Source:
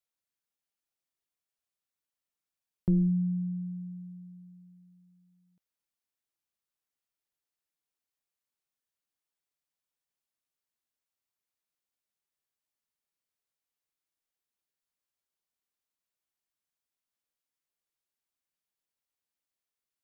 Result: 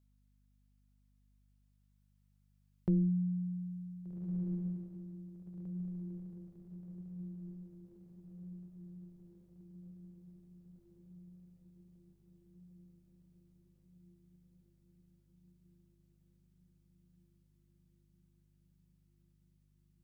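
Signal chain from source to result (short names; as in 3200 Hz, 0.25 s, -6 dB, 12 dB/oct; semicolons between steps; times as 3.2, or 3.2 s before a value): low shelf 190 Hz -9 dB; hum 50 Hz, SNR 25 dB; diffused feedback echo 1.597 s, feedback 64%, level -7 dB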